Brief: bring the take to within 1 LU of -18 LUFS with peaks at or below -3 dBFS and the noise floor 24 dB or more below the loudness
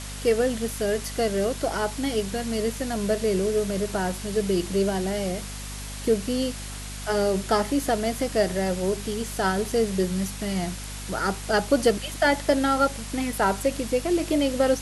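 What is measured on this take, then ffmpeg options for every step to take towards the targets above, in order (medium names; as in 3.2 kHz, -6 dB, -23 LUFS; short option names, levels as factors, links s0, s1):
hum 50 Hz; highest harmonic 250 Hz; hum level -34 dBFS; noise floor -36 dBFS; noise floor target -50 dBFS; loudness -25.5 LUFS; peak level -8.5 dBFS; loudness target -18.0 LUFS
-> -af "bandreject=f=50:t=h:w=6,bandreject=f=100:t=h:w=6,bandreject=f=150:t=h:w=6,bandreject=f=200:t=h:w=6,bandreject=f=250:t=h:w=6"
-af "afftdn=nr=14:nf=-36"
-af "volume=2.37,alimiter=limit=0.708:level=0:latency=1"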